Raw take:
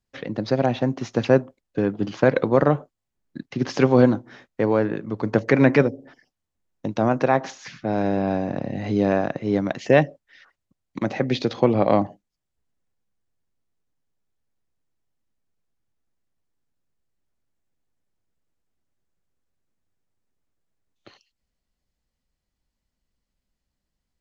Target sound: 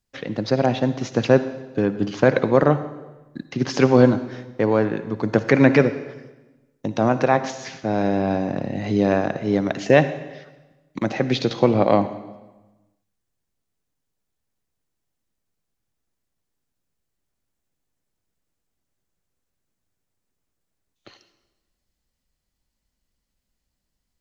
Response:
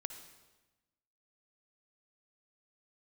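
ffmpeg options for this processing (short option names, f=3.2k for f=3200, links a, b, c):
-filter_complex "[0:a]asplit=2[a][b];[1:a]atrim=start_sample=2205,highshelf=f=3.8k:g=8[c];[b][c]afir=irnorm=-1:irlink=0,volume=4dB[d];[a][d]amix=inputs=2:normalize=0,volume=-5.5dB"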